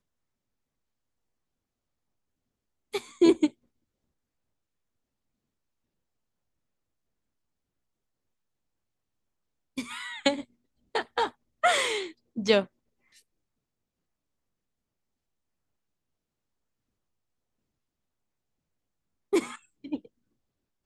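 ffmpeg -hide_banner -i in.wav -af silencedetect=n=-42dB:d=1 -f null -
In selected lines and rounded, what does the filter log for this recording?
silence_start: 0.00
silence_end: 2.94 | silence_duration: 2.94
silence_start: 3.50
silence_end: 9.77 | silence_duration: 6.28
silence_start: 12.65
silence_end: 19.33 | silence_duration: 6.68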